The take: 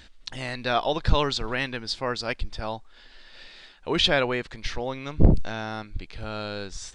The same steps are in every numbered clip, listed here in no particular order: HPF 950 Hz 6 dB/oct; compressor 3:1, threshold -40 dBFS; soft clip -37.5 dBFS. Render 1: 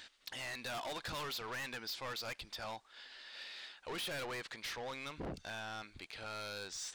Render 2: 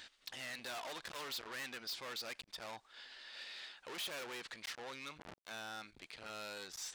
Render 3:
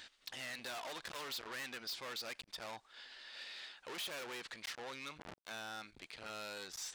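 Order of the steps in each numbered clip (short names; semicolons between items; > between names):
HPF > soft clip > compressor; soft clip > compressor > HPF; soft clip > HPF > compressor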